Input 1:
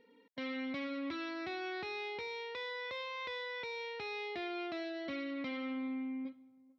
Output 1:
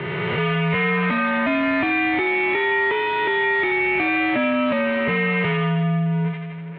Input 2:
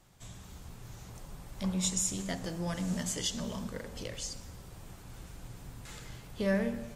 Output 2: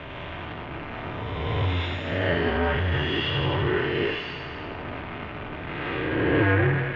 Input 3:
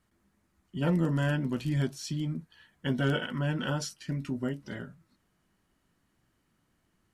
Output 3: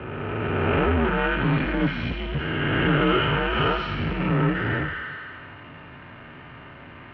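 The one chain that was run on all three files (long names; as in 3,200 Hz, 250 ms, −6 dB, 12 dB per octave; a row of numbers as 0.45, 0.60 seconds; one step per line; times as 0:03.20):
peak hold with a rise ahead of every peak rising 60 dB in 1.55 s
notch comb filter 300 Hz
delay with a high-pass on its return 82 ms, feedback 64%, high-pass 1,600 Hz, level −4 dB
power curve on the samples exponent 0.5
single-sideband voice off tune −97 Hz 210–2,900 Hz
normalise the peak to −9 dBFS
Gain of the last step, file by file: +15.5, +5.0, +5.0 decibels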